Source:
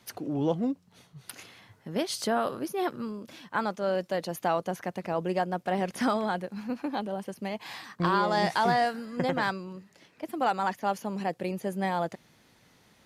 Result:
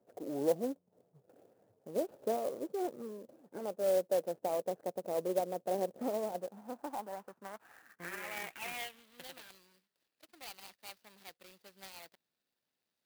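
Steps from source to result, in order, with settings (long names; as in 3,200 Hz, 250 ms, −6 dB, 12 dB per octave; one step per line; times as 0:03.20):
running median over 41 samples
band-pass filter sweep 540 Hz → 4,600 Hz, 0:06.19–0:09.56
converter with an unsteady clock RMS 0.035 ms
level +2 dB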